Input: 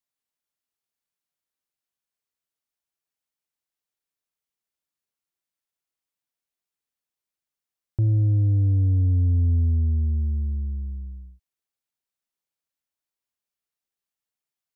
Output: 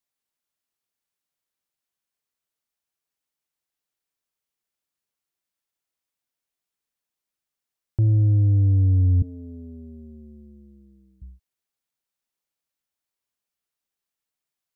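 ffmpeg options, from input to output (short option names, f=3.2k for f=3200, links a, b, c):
-filter_complex "[0:a]asettb=1/sr,asplit=3[a][b][c];[a]atrim=end=9.224[d];[b]atrim=start=9.22:end=11.22,asetpts=PTS-STARTPTS,afade=t=in:d=0.004:c=qsin,afade=t=out:st=1.996:d=0.004:c=qsin,highpass=340[e];[c]atrim=start=11.216[f];[d][e]acrossfade=d=0.004:c1=hsin:c2=qsin[g];[g][f]acrossfade=d=0.004:c1=qsin:c2=hsin,volume=2dB"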